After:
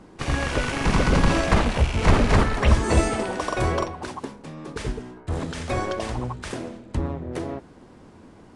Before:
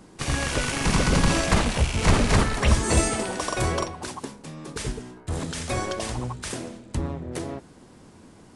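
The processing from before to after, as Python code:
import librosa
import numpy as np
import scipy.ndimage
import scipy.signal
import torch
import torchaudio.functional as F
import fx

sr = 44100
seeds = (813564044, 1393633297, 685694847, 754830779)

y = fx.lowpass(x, sr, hz=2200.0, slope=6)
y = fx.peak_eq(y, sr, hz=150.0, db=-3.0, octaves=1.2)
y = y * 10.0 ** (3.0 / 20.0)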